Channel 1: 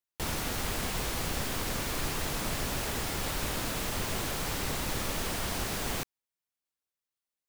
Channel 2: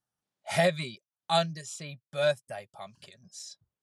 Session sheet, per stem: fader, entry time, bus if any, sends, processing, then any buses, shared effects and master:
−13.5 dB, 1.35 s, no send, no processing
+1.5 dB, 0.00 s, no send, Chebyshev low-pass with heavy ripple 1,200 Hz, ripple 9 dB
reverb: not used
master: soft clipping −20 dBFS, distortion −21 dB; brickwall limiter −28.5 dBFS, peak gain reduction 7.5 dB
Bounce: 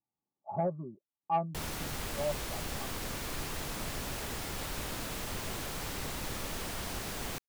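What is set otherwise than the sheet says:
stem 1 −13.5 dB → −5.0 dB
master: missing brickwall limiter −28.5 dBFS, peak gain reduction 7.5 dB

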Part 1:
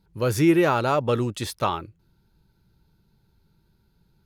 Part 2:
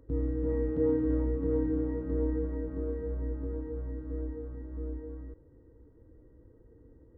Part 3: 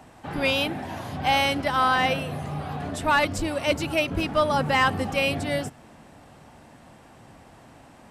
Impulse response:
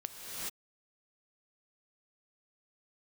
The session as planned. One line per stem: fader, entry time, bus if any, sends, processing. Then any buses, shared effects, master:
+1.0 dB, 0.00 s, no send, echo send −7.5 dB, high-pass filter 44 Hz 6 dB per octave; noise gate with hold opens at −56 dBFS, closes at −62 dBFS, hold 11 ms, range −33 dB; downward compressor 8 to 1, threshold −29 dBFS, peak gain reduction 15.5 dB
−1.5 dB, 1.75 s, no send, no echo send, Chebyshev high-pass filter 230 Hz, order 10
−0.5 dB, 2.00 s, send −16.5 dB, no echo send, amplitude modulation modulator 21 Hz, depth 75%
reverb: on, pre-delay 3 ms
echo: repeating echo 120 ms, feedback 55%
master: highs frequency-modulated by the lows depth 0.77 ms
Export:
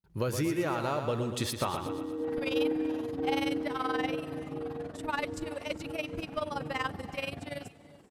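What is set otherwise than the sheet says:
stem 3 −0.5 dB → −10.0 dB
master: missing highs frequency-modulated by the lows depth 0.77 ms

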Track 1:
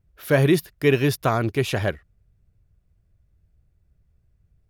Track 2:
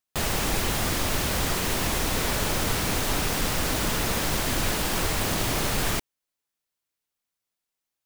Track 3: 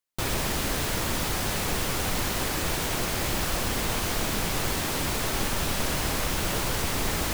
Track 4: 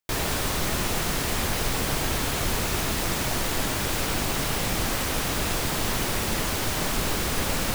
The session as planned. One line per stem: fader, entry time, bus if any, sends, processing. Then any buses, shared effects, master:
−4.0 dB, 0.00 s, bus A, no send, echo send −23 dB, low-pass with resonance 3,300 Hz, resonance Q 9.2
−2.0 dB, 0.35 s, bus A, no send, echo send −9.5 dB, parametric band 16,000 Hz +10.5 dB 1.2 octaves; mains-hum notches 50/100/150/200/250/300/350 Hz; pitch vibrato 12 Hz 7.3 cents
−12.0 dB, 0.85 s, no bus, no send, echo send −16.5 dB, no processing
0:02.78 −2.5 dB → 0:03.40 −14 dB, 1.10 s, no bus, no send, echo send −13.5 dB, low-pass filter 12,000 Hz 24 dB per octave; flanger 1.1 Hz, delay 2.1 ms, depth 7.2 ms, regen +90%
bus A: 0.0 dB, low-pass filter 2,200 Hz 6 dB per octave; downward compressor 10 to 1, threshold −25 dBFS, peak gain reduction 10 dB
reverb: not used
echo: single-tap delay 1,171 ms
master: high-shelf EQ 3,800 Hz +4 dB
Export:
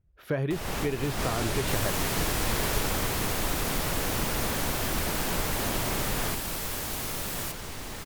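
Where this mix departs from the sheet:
stem 1: missing low-pass with resonance 3,300 Hz, resonance Q 9.2
master: missing high-shelf EQ 3,800 Hz +4 dB

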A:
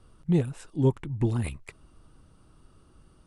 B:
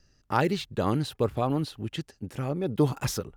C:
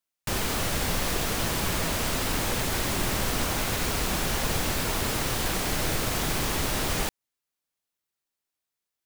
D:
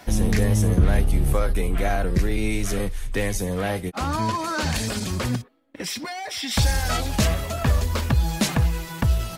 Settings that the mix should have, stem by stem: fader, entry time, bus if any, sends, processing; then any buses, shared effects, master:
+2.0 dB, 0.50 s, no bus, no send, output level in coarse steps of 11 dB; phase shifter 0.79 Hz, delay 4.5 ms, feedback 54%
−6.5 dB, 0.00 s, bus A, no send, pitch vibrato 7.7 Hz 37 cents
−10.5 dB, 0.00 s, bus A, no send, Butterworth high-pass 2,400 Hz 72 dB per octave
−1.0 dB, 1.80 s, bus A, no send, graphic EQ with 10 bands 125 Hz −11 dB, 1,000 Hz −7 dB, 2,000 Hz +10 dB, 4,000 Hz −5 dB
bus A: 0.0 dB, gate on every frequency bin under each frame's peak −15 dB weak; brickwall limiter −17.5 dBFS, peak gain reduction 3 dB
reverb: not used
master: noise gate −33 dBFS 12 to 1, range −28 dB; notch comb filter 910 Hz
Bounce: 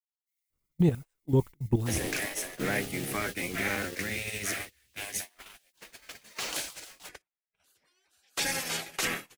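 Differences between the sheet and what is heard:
stem A: missing phase shifter 0.79 Hz, delay 4.5 ms, feedback 54%
stem B: muted
master: missing notch comb filter 910 Hz

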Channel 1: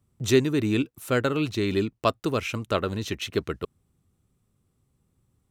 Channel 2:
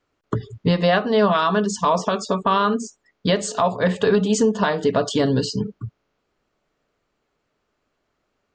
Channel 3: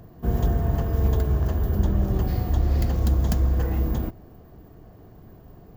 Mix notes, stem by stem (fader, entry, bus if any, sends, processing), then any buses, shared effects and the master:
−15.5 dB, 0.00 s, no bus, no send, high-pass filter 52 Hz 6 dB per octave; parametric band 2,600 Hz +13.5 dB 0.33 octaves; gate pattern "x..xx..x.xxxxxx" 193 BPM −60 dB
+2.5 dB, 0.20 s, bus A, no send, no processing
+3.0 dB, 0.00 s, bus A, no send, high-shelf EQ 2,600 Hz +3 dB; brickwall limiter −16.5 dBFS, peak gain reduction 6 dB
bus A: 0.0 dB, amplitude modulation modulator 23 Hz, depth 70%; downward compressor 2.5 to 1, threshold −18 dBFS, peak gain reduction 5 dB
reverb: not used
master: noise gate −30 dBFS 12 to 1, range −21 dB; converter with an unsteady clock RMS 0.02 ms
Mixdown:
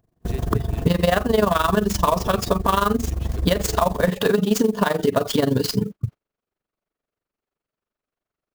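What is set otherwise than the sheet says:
stem 1: missing parametric band 2,600 Hz +13.5 dB 0.33 octaves
stem 2 +2.5 dB → +9.5 dB

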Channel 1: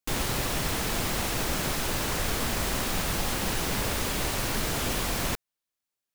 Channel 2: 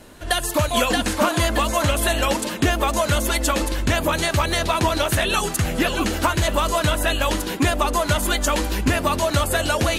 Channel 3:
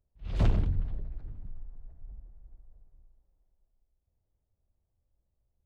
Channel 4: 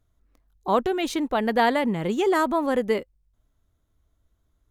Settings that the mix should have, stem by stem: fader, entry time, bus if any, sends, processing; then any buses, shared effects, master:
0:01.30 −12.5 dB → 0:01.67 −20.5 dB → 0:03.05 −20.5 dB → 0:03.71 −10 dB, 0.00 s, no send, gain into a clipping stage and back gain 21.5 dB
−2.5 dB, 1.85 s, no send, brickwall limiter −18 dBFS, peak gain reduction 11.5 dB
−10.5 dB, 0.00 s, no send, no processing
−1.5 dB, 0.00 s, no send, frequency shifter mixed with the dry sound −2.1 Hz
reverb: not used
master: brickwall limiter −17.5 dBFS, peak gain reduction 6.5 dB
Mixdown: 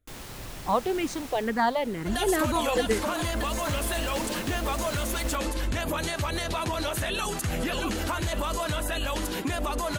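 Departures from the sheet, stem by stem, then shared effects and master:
stem 3 −10.5 dB → −20.5 dB
master: missing brickwall limiter −17.5 dBFS, peak gain reduction 6.5 dB

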